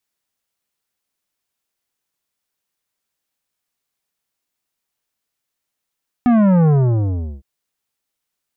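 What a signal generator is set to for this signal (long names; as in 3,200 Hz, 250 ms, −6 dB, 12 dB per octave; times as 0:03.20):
bass drop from 250 Hz, over 1.16 s, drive 12 dB, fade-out 0.74 s, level −11 dB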